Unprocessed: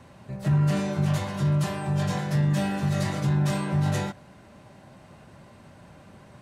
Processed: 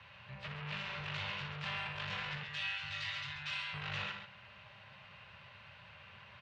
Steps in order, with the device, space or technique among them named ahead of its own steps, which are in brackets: HPF 55 Hz 12 dB/oct; bell 160 Hz -4.5 dB 0.26 oct; 2.43–3.74 passive tone stack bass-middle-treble 10-0-10; scooped metal amplifier (tube stage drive 35 dB, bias 0.5; speaker cabinet 93–3600 Hz, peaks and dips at 280 Hz -9 dB, 720 Hz -6 dB, 2700 Hz +6 dB; passive tone stack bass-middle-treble 10-0-10); loudspeakers at several distances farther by 20 m -9 dB, 46 m -8 dB; gain +7.5 dB

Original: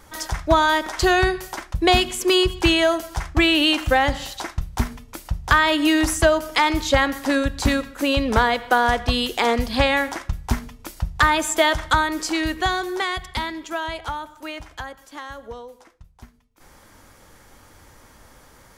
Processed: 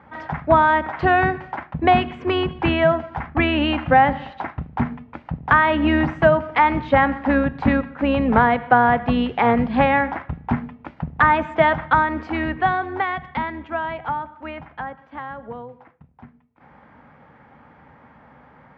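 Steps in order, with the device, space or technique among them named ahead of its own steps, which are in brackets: sub-octave bass pedal (octaver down 2 oct, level -1 dB; speaker cabinet 76–2300 Hz, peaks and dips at 96 Hz -9 dB, 150 Hz +7 dB, 240 Hz +6 dB, 350 Hz -6 dB, 810 Hz +6 dB); gain +1 dB

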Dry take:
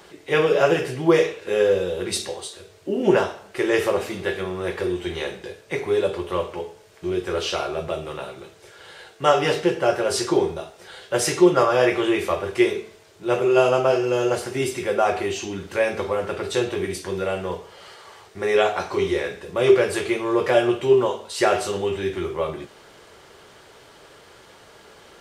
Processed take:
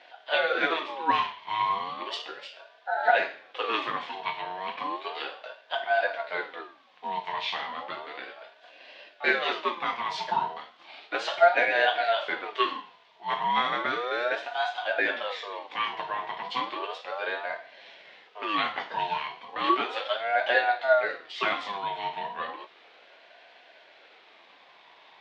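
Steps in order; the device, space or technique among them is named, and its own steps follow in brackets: voice changer toy (ring modulator with a swept carrier 820 Hz, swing 35%, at 0.34 Hz; speaker cabinet 570–3900 Hz, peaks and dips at 700 Hz +4 dB, 1300 Hz -8 dB, 3400 Hz +4 dB); gain -1 dB

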